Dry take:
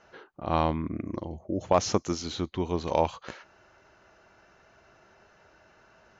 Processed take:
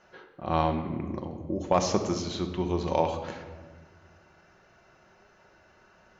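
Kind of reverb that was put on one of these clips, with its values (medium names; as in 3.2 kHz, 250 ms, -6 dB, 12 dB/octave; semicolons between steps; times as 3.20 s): simulated room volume 1400 m³, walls mixed, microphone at 1 m; trim -1.5 dB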